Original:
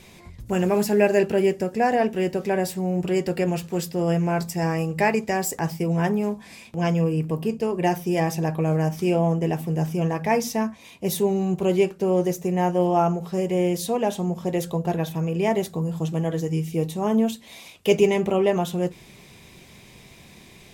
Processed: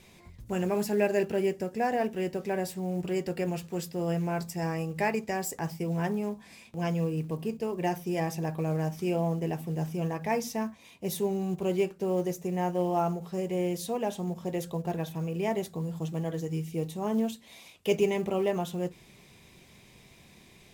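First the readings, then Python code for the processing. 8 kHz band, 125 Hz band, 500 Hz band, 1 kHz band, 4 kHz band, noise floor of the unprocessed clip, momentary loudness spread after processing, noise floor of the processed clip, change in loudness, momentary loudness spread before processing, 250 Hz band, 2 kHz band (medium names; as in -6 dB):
-7.5 dB, -7.5 dB, -7.5 dB, -7.5 dB, -7.5 dB, -49 dBFS, 6 LU, -56 dBFS, -7.5 dB, 6 LU, -7.5 dB, -7.5 dB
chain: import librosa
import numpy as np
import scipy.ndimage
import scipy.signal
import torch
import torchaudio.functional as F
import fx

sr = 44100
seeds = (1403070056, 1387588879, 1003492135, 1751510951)

y = fx.quant_float(x, sr, bits=4)
y = F.gain(torch.from_numpy(y), -7.5).numpy()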